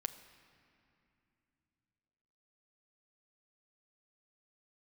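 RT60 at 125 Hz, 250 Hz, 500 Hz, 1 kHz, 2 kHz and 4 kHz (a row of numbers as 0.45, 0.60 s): 4.1, 3.8, 2.7, 2.6, 2.6, 1.9 s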